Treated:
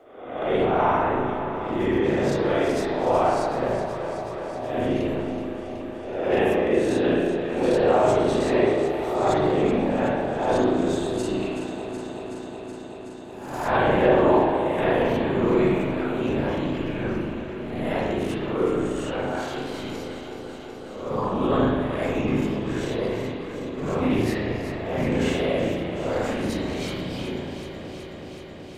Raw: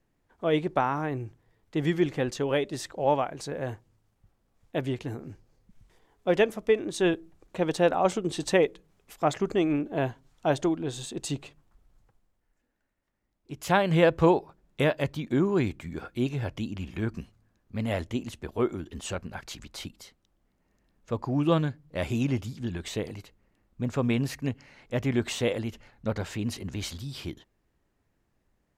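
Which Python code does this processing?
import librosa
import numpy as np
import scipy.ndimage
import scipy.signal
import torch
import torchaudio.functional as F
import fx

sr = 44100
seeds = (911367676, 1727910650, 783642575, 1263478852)

p1 = fx.spec_swells(x, sr, rise_s=0.65)
p2 = fx.highpass(p1, sr, hz=650.0, slope=6)
p3 = fx.tilt_shelf(p2, sr, db=7.0, hz=970.0)
p4 = fx.transient(p3, sr, attack_db=-11, sustain_db=5)
p5 = fx.whisperise(p4, sr, seeds[0])
p6 = p5 + fx.echo_alternate(p5, sr, ms=187, hz=1000.0, feedback_pct=84, wet_db=-10.5, dry=0)
p7 = fx.rev_spring(p6, sr, rt60_s=1.1, pass_ms=(35, 43), chirp_ms=25, drr_db=-4.5)
y = fx.band_squash(p7, sr, depth_pct=40)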